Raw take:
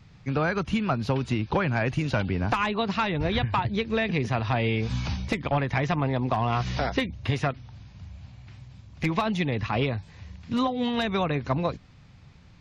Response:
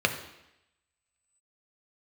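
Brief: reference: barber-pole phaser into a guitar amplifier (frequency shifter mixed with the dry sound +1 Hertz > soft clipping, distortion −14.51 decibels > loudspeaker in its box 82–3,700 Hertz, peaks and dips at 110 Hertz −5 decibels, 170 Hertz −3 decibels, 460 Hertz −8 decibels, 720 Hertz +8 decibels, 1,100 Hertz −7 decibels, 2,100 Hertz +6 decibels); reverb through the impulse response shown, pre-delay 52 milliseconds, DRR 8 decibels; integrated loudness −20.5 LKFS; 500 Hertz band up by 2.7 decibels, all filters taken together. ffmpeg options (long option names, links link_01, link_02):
-filter_complex "[0:a]equalizer=frequency=500:width_type=o:gain=3.5,asplit=2[link_01][link_02];[1:a]atrim=start_sample=2205,adelay=52[link_03];[link_02][link_03]afir=irnorm=-1:irlink=0,volume=-21dB[link_04];[link_01][link_04]amix=inputs=2:normalize=0,asplit=2[link_05][link_06];[link_06]afreqshift=1[link_07];[link_05][link_07]amix=inputs=2:normalize=1,asoftclip=threshold=-22dB,highpass=82,equalizer=frequency=110:width_type=q:width=4:gain=-5,equalizer=frequency=170:width_type=q:width=4:gain=-3,equalizer=frequency=460:width_type=q:width=4:gain=-8,equalizer=frequency=720:width_type=q:width=4:gain=8,equalizer=frequency=1100:width_type=q:width=4:gain=-7,equalizer=frequency=2100:width_type=q:width=4:gain=6,lowpass=frequency=3700:width=0.5412,lowpass=frequency=3700:width=1.3066,volume=10dB"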